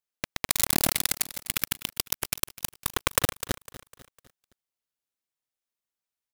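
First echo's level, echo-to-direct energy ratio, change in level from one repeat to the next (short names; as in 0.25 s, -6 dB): -17.0 dB, -16.0 dB, -7.0 dB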